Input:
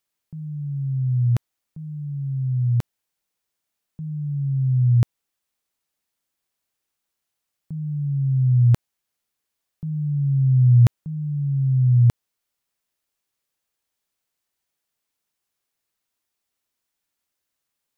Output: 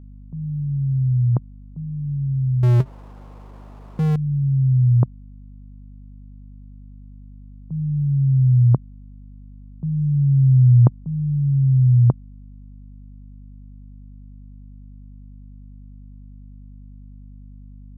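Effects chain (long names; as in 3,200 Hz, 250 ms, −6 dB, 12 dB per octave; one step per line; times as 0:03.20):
elliptic band-pass filter 130–1,100 Hz
0:02.63–0:04.16: power curve on the samples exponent 0.5
mains hum 50 Hz, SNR 20 dB
level +4.5 dB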